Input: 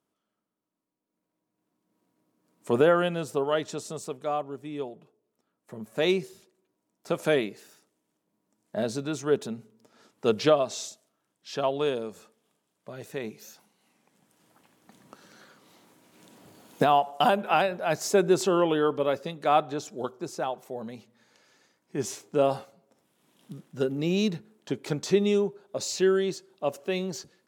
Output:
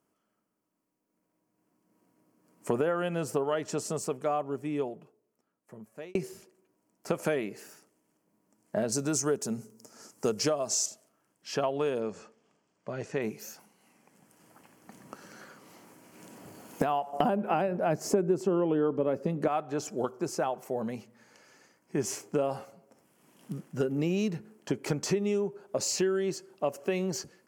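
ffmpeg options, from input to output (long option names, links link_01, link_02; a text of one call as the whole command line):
ffmpeg -i in.wav -filter_complex "[0:a]asettb=1/sr,asplit=3[link_01][link_02][link_03];[link_01]atrim=end=8.924[link_04];[link_02]atrim=start=8.92:end=10.86,asetpts=PTS-STARTPTS,afade=type=in:duration=0.004:curve=qsin,afade=type=out:start_time=1.936:duration=0.004:curve=qsin,highshelf=frequency=4400:width_type=q:width=1.5:gain=10[link_05];[link_03]atrim=start=10.856[link_06];[link_04][link_05]acrossfade=duration=0.004:curve1=hsin:curve2=qsin[link_07];[link_07][link_06]acrossfade=duration=0.004:curve1=qsin:curve2=hsin,asettb=1/sr,asplit=3[link_08][link_09][link_10];[link_08]atrim=end=12.004[link_11];[link_09]atrim=start=12:end=13.22,asetpts=PTS-STARTPTS,afade=type=in:duration=0.004:curve=qsin,afade=type=out:start_time=1.216:duration=0.004:curve=qsin,lowpass=frequency=6800:width=0.5412,lowpass=frequency=6800:width=1.3066[link_12];[link_10]atrim=start=13.216[link_13];[link_11][link_12]acrossfade=duration=0.004:curve1=hsin:curve2=qsin[link_14];[link_14][link_13]acrossfade=duration=0.004:curve1=qsin:curve2=hsin,asettb=1/sr,asplit=3[link_15][link_16][link_17];[link_15]atrim=end=17.134[link_18];[link_16]atrim=start=17.13:end=19.48,asetpts=PTS-STARTPTS,afade=type=in:duration=0.004:curve=qsin,afade=type=out:start_time=2.346:duration=0.004:curve=qsin,equalizer=frequency=220:width=0.34:gain=14.5[link_19];[link_17]atrim=start=19.476[link_20];[link_18][link_19]acrossfade=duration=0.004:curve1=hsin:curve2=qsin[link_21];[link_21][link_20]acrossfade=duration=0.004:curve1=qsin:curve2=hsin,asplit=2[link_22][link_23];[link_22]atrim=end=6.15,asetpts=PTS-STARTPTS,afade=type=out:start_time=4.69:duration=1.46[link_24];[link_23]atrim=start=6.15,asetpts=PTS-STARTPTS,afade=type=in:duration=0.004:curve=hsin[link_25];[link_24][link_25]concat=n=2:v=0:a=1,equalizer=frequency=3700:width_type=o:width=0.29:gain=-14.5,acompressor=threshold=-30dB:ratio=6,volume=4.5dB" out.wav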